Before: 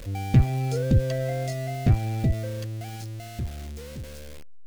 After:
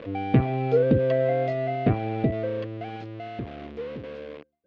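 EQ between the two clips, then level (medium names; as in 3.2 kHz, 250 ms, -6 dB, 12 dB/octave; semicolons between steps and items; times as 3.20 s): cabinet simulation 170–3100 Hz, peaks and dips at 290 Hz +6 dB, 450 Hz +9 dB, 650 Hz +4 dB, 1.1 kHz +6 dB; +2.5 dB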